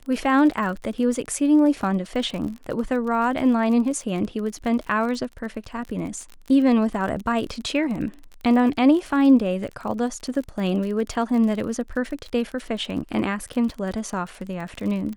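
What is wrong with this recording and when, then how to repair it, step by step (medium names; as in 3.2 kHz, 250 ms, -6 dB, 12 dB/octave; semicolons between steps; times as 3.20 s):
crackle 40 per s -30 dBFS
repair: de-click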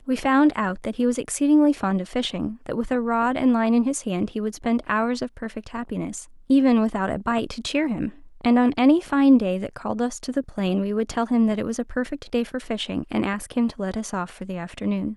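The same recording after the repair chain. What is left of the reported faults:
nothing left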